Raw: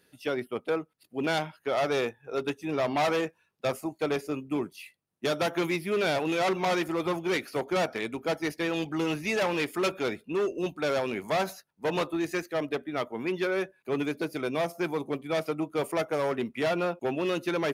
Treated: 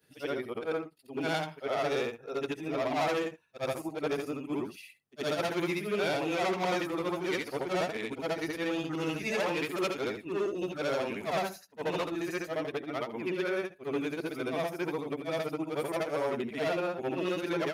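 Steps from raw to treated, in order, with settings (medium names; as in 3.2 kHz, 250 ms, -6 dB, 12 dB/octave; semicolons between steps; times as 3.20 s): short-time spectra conjugated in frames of 176 ms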